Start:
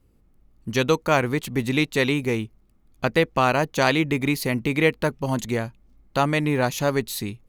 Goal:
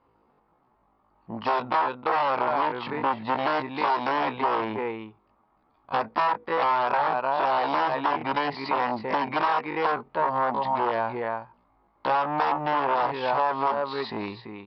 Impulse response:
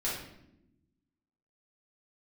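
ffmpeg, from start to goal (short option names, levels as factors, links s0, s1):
-filter_complex "[0:a]asplit=2[s0][s1];[s1]adelay=163.3,volume=0.355,highshelf=f=4000:g=-3.67[s2];[s0][s2]amix=inputs=2:normalize=0,aresample=11025,aeval=exprs='0.562*sin(PI/2*6.31*val(0)/0.562)':c=same,aresample=44100,atempo=0.51,bandpass=f=950:t=q:w=3.7:csg=0,acompressor=threshold=0.0891:ratio=4"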